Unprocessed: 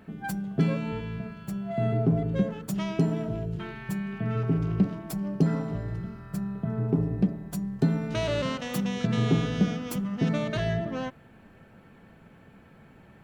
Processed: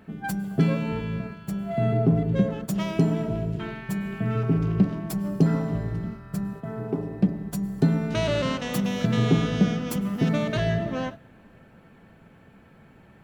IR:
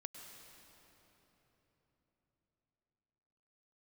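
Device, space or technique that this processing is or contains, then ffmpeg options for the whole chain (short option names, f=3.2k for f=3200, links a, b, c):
keyed gated reverb: -filter_complex "[0:a]asettb=1/sr,asplit=3[a][b][c];[a]atrim=end=6.534[d];[b]atrim=start=6.53:end=7.23,asetpts=PTS-STARTPTS,afade=t=in:d=0.004:c=qsin,afade=t=out:st=0.696:d=0.004:c=qsin,bass=f=250:g=-12,treble=f=4k:g=-1[e];[c]atrim=start=7.226[f];[d][e]acrossfade=d=0.004:c1=hsin:c2=qsin[g];[g][f]acrossfade=d=0.004:c1=qsin:c2=hsin,asplit=3[h][i][j];[1:a]atrim=start_sample=2205[k];[i][k]afir=irnorm=-1:irlink=0[l];[j]apad=whole_len=583692[m];[l][m]sidechaingate=range=-17dB:threshold=-39dB:ratio=16:detection=peak,volume=-2dB[n];[h][n]amix=inputs=2:normalize=0"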